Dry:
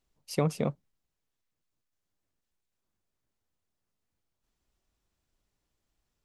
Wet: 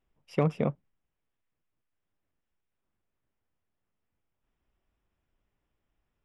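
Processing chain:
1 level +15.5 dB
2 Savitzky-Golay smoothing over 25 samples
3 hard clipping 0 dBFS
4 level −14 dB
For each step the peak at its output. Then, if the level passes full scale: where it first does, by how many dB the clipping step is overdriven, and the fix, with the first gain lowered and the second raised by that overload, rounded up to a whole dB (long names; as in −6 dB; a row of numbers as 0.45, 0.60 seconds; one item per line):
+3.5, +3.5, 0.0, −14.0 dBFS
step 1, 3.5 dB
step 1 +11.5 dB, step 4 −10 dB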